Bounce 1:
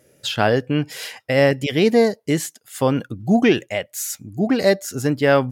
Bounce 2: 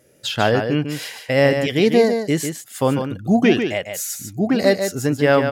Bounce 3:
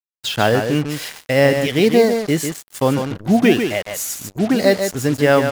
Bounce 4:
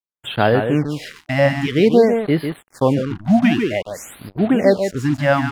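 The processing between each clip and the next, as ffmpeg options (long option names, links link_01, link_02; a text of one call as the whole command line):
ffmpeg -i in.wav -af "aecho=1:1:147:0.447" out.wav
ffmpeg -i in.wav -af "acrusher=bits=4:mix=0:aa=0.5,volume=1.5dB" out.wav
ffmpeg -i in.wav -af "aemphasis=mode=reproduction:type=75kf,afftfilt=real='re*(1-between(b*sr/1024,390*pow(7200/390,0.5+0.5*sin(2*PI*0.52*pts/sr))/1.41,390*pow(7200/390,0.5+0.5*sin(2*PI*0.52*pts/sr))*1.41))':imag='im*(1-between(b*sr/1024,390*pow(7200/390,0.5+0.5*sin(2*PI*0.52*pts/sr))/1.41,390*pow(7200/390,0.5+0.5*sin(2*PI*0.52*pts/sr))*1.41))':win_size=1024:overlap=0.75,volume=1dB" out.wav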